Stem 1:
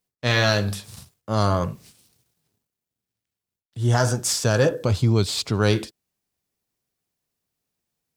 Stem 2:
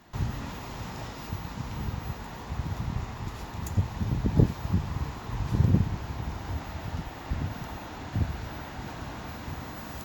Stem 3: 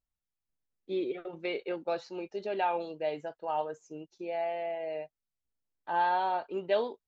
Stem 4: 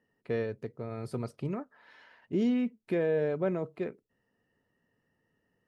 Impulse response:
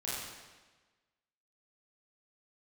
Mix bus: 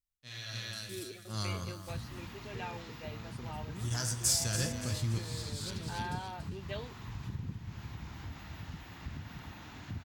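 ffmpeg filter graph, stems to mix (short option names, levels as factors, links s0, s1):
-filter_complex "[0:a]highshelf=f=3300:g=10.5,volume=0.211,asplit=3[s0][s1][s2];[s1]volume=0.178[s3];[s2]volume=0.335[s4];[1:a]acrossover=split=4200[s5][s6];[s6]acompressor=threshold=0.00141:ratio=4:attack=1:release=60[s7];[s5][s7]amix=inputs=2:normalize=0,highpass=f=130:p=1,acompressor=threshold=0.0224:ratio=4,adelay=1750,volume=0.75,asplit=2[s8][s9];[s9]volume=0.299[s10];[2:a]volume=0.668,asplit=2[s11][s12];[3:a]acompressor=threshold=0.0251:ratio=6,adelay=2250,volume=0.596[s13];[s12]apad=whole_len=360292[s14];[s0][s14]sidechaingate=range=0.112:threshold=0.00112:ratio=16:detection=peak[s15];[4:a]atrim=start_sample=2205[s16];[s3][s16]afir=irnorm=-1:irlink=0[s17];[s4][s10]amix=inputs=2:normalize=0,aecho=0:1:285|570|855|1140|1425:1|0.39|0.152|0.0593|0.0231[s18];[s15][s8][s11][s13][s17][s18]amix=inputs=6:normalize=0,equalizer=f=590:t=o:w=2.3:g=-12.5"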